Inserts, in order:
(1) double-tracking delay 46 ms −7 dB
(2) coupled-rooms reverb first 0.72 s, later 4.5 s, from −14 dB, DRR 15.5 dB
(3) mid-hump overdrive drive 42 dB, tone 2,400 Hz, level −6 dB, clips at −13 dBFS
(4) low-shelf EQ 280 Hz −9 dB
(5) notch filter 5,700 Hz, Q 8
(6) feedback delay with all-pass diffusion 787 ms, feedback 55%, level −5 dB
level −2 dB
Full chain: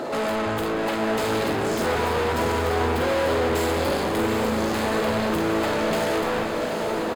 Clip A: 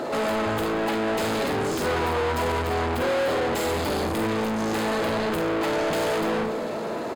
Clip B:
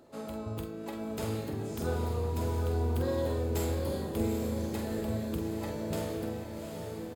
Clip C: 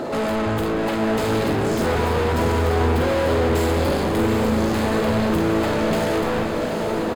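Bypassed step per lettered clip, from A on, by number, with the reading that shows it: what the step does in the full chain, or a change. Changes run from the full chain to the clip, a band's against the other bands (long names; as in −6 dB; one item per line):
6, change in momentary loudness spread −1 LU
3, change in crest factor +4.5 dB
4, 125 Hz band +7.5 dB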